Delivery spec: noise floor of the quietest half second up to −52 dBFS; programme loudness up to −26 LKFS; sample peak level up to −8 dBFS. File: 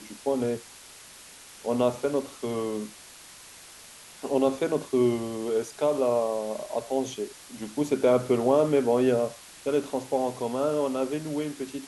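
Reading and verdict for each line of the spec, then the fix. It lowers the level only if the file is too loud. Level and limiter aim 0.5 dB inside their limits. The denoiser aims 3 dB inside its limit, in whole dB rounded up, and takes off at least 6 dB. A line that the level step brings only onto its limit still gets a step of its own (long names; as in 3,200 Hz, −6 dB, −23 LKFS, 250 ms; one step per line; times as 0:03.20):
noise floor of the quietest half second −48 dBFS: out of spec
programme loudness −27.0 LKFS: in spec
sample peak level −10.0 dBFS: in spec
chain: broadband denoise 7 dB, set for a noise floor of −48 dBFS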